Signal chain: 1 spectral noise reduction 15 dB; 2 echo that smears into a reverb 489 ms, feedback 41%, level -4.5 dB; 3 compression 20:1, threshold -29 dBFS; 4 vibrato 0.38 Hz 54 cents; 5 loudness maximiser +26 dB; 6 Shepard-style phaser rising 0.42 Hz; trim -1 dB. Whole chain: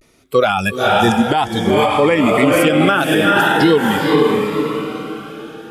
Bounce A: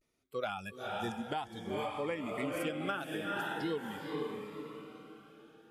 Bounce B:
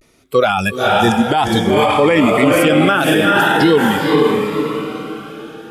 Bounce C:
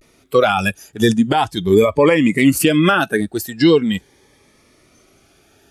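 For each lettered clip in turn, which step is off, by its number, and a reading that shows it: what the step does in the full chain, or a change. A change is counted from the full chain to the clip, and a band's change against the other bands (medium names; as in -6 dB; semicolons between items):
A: 5, crest factor change +3.0 dB; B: 3, mean gain reduction 3.0 dB; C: 2, crest factor change +2.5 dB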